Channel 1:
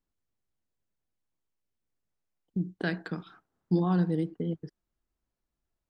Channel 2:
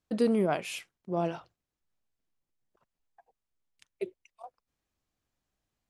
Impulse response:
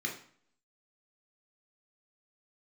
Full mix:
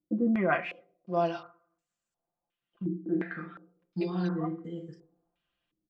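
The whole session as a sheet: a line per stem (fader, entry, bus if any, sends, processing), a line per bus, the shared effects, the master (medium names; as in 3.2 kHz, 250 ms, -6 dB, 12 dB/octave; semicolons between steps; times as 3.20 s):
-2.5 dB, 0.25 s, send -6.5 dB, auto duck -8 dB, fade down 0.80 s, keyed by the second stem
+2.0 dB, 0.00 s, send -14 dB, treble shelf 5.4 kHz -8 dB; comb of notches 440 Hz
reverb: on, RT60 0.55 s, pre-delay 3 ms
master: bass shelf 330 Hz -11.5 dB; comb 5.8 ms, depth 74%; step-sequenced low-pass 2.8 Hz 320–7600 Hz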